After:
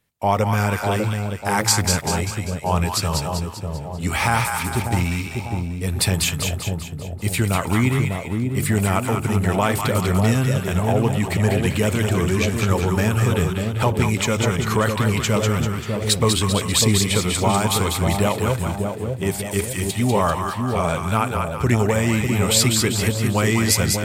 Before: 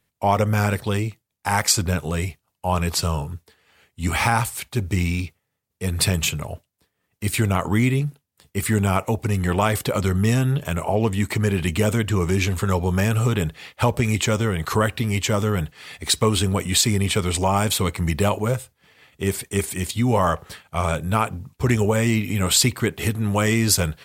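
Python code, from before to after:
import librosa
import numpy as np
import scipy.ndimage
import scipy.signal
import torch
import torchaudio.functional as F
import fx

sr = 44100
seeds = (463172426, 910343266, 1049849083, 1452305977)

y = fx.echo_split(x, sr, split_hz=820.0, low_ms=597, high_ms=196, feedback_pct=52, wet_db=-4.0)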